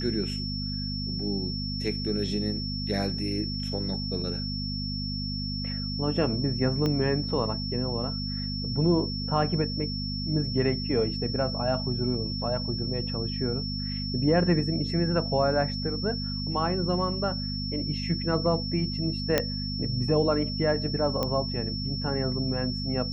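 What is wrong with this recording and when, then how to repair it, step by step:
mains hum 50 Hz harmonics 5 −33 dBFS
whistle 5,400 Hz −34 dBFS
0:06.86: click −16 dBFS
0:19.38: click −7 dBFS
0:21.23: click −14 dBFS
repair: click removal
notch filter 5,400 Hz, Q 30
hum removal 50 Hz, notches 5

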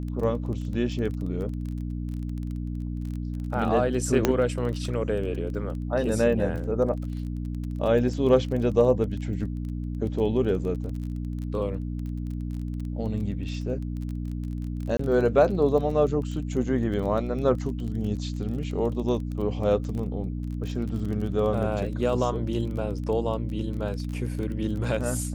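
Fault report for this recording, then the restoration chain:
surface crackle 23 per second −33 dBFS
mains hum 60 Hz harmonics 5 −31 dBFS
0:04.25: click −6 dBFS
0:14.97–0:14.99: drop-out 24 ms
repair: click removal
hum removal 60 Hz, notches 5
repair the gap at 0:14.97, 24 ms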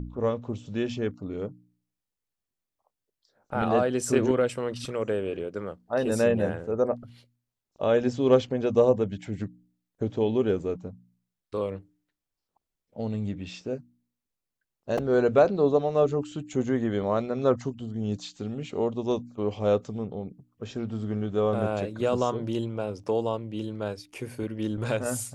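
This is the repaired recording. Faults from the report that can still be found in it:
none of them is left

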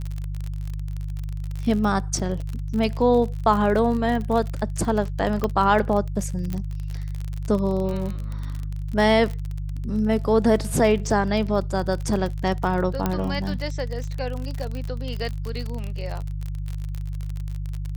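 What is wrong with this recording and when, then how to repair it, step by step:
surface crackle 38 per second −27 dBFS
mains hum 50 Hz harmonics 3 −29 dBFS
0:05.44: click −11 dBFS
0:06.53: click −16 dBFS
0:13.06: click −9 dBFS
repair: click removal
hum removal 50 Hz, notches 3

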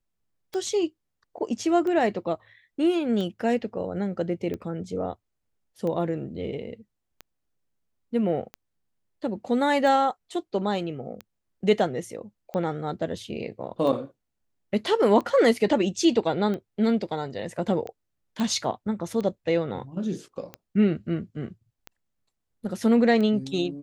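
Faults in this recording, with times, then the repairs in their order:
scratch tick 45 rpm −21 dBFS
0:18.40: click −17 dBFS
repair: click removal

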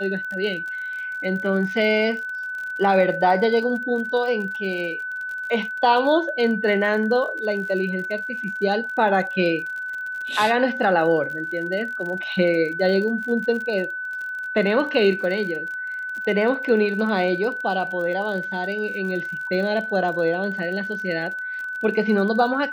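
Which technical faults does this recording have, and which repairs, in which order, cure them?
surface crackle 46 per second −31 dBFS
whistle 1,500 Hz −27 dBFS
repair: click removal
notch filter 1,500 Hz, Q 30

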